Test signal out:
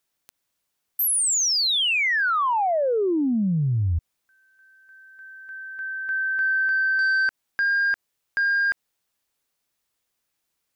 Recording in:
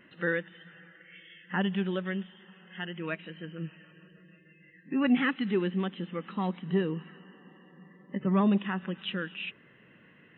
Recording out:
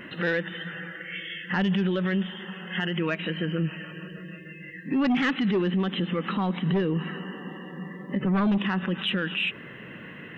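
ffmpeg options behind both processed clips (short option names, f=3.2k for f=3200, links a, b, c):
-af "aeval=exprs='0.178*sin(PI/2*1.78*val(0)/0.178)':c=same,alimiter=level_in=2dB:limit=-24dB:level=0:latency=1:release=68,volume=-2dB,volume=7dB"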